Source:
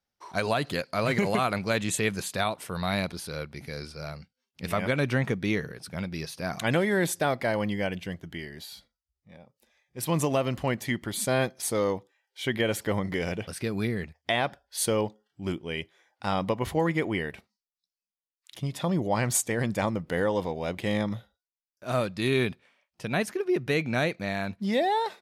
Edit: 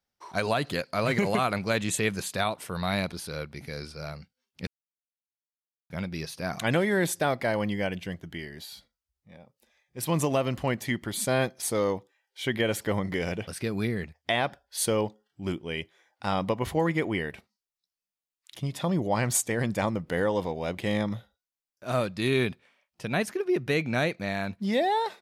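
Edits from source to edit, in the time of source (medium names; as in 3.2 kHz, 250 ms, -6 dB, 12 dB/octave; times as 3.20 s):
4.67–5.90 s: mute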